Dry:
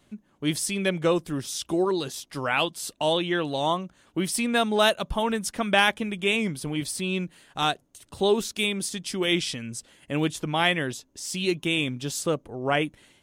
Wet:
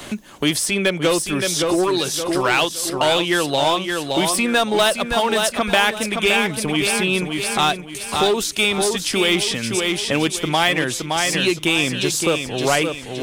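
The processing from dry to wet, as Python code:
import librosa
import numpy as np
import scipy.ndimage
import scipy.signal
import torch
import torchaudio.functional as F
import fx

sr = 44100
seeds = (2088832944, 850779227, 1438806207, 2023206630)

p1 = fx.peak_eq(x, sr, hz=180.0, db=-7.5, octaves=1.9)
p2 = 10.0 ** (-23.0 / 20.0) * (np.abs((p1 / 10.0 ** (-23.0 / 20.0) + 3.0) % 4.0 - 2.0) - 1.0)
p3 = p1 + F.gain(torch.from_numpy(p2), -6.0).numpy()
p4 = fx.echo_feedback(p3, sr, ms=568, feedback_pct=36, wet_db=-7.0)
p5 = fx.band_squash(p4, sr, depth_pct=70)
y = F.gain(torch.from_numpy(p5), 5.5).numpy()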